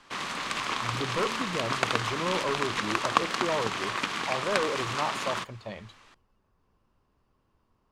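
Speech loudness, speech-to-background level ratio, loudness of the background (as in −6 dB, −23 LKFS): −34.0 LKFS, −4.0 dB, −30.0 LKFS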